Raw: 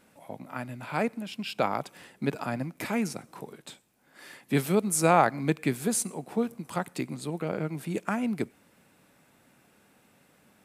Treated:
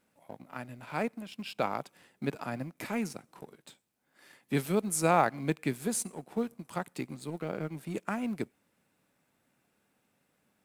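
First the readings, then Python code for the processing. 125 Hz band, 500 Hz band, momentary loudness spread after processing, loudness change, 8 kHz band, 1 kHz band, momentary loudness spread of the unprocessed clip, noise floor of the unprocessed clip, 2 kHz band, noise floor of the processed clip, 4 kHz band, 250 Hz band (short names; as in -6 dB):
-4.5 dB, -4.0 dB, 17 LU, -4.0 dB, -4.5 dB, -4.0 dB, 20 LU, -63 dBFS, -4.0 dB, -76 dBFS, -5.0 dB, -4.5 dB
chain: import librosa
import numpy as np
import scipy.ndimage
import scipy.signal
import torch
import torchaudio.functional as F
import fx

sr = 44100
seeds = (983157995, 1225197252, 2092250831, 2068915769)

y = fx.law_mismatch(x, sr, coded='A')
y = y * librosa.db_to_amplitude(-3.5)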